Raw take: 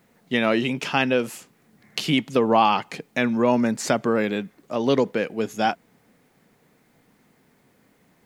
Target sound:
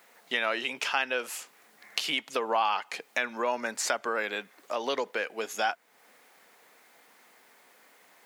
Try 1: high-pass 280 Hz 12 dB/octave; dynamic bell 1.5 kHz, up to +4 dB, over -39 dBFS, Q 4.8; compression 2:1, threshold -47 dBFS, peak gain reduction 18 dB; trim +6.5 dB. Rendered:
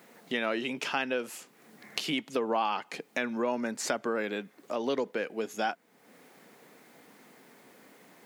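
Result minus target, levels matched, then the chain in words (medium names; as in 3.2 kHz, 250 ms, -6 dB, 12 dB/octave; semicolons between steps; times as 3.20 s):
250 Hz band +9.5 dB; compression: peak gain reduction +4.5 dB
high-pass 700 Hz 12 dB/octave; dynamic bell 1.5 kHz, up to +4 dB, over -39 dBFS, Q 4.8; compression 2:1, threshold -40.5 dBFS, peak gain reduction 14 dB; trim +6.5 dB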